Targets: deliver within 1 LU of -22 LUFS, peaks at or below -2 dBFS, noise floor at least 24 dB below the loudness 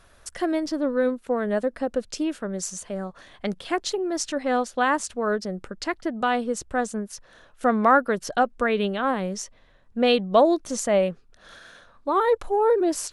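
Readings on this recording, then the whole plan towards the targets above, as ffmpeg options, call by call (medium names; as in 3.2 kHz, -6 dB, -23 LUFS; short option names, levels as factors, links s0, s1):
loudness -24.5 LUFS; peak level -6.0 dBFS; loudness target -22.0 LUFS
-> -af "volume=1.33"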